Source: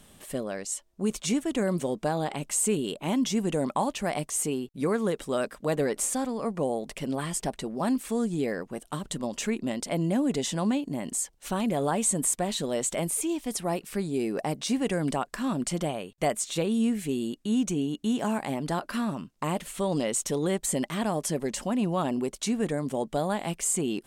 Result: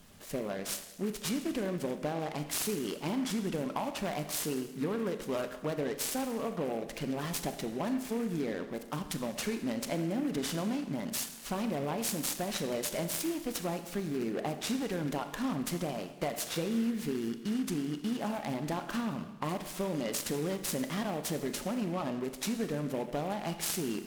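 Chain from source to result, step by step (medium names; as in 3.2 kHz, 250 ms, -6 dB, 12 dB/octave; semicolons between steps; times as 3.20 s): coarse spectral quantiser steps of 15 dB; compression, threshold -28 dBFS, peak gain reduction 7 dB; Schroeder reverb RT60 1.1 s, combs from 27 ms, DRR 8 dB; delay time shaken by noise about 1.6 kHz, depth 0.04 ms; trim -2 dB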